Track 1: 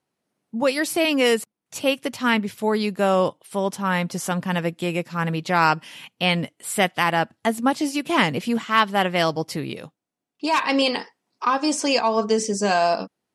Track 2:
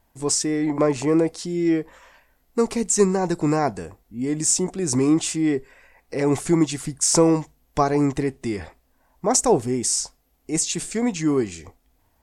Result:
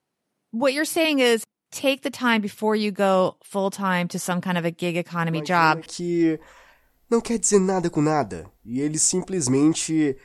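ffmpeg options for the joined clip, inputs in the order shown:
ffmpeg -i cue0.wav -i cue1.wav -filter_complex "[1:a]asplit=2[link_01][link_02];[0:a]apad=whole_dur=10.24,atrim=end=10.24,atrim=end=5.862[link_03];[link_02]atrim=start=1.318:end=5.7[link_04];[link_01]atrim=start=0.78:end=1.32,asetpts=PTS-STARTPTS,volume=-14.5dB,afade=type=in:duration=0.004:curve=hsin,afade=type=out:start_time=0.536:duration=0.004:curve=hsin,adelay=5320[link_05];[link_03][link_04]acrossfade=duration=0.004:curve1=hsin:curve2=hsin[link_06];[link_06][link_05]amix=inputs=2:normalize=0" out.wav

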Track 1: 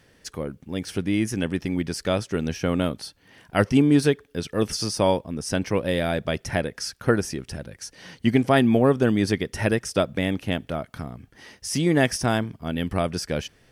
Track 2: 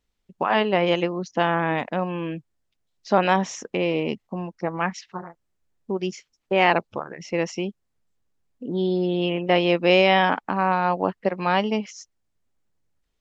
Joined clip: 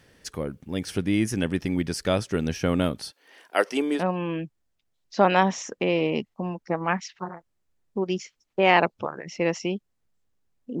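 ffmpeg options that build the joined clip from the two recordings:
ffmpeg -i cue0.wav -i cue1.wav -filter_complex "[0:a]asettb=1/sr,asplit=3[link_01][link_02][link_03];[link_01]atrim=end=3.114[link_04];[link_02]atrim=start=3.11:end=4.03,asetpts=PTS-STARTPTS,afade=type=in:duration=0.004:curve=qsin,afade=type=out:start_time=0.916:duration=0.004:curve=qsin,highpass=frequency=360:width=0.5412,highpass=frequency=360:width=1.3066[link_05];[link_03]atrim=start=4.026[link_06];[link_04][link_05]acrossfade=duration=0.004:curve1=hsin:curve2=qsin[link_07];[link_07][link_06]acrossfade=duration=0.004:curve1=qsin:curve2=hsin,apad=whole_dur=10.8,atrim=end=10.8,atrim=end=4.03,asetpts=PTS-STARTPTS[link_08];[1:a]atrim=start=1.86:end=8.73,asetpts=PTS-STARTPTS[link_09];[link_08][link_09]acrossfade=duration=0.1:curve1=tri:curve2=tri" out.wav

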